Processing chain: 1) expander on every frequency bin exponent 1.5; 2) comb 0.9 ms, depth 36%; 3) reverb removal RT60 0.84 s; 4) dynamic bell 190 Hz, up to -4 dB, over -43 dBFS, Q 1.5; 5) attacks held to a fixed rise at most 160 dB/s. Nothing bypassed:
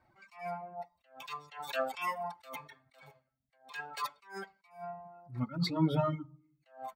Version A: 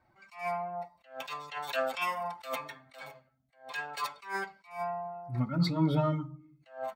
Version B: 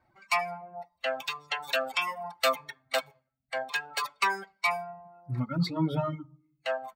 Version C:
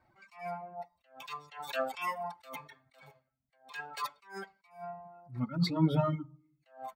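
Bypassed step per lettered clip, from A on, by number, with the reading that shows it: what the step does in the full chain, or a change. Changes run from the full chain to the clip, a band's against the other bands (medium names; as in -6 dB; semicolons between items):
3, 2 kHz band +2.0 dB; 5, 250 Hz band -7.0 dB; 4, 125 Hz band +2.5 dB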